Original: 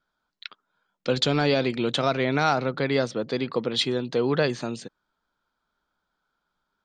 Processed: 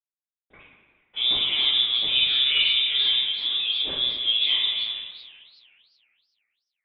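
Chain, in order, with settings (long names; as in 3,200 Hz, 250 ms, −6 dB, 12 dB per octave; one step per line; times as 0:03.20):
high shelf with overshoot 1,700 Hz −8 dB, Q 1.5
mains-hum notches 60/120/180/240 Hz
tape wow and flutter 18 cents
bit reduction 8 bits
feedback echo with a high-pass in the loop 181 ms, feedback 41%, level −14 dB
convolution reverb RT60 1.0 s, pre-delay 76 ms
bad sample-rate conversion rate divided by 6×, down none, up hold
voice inversion scrambler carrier 3,700 Hz
feedback echo with a swinging delay time 382 ms, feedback 33%, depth 200 cents, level −19 dB
level +3 dB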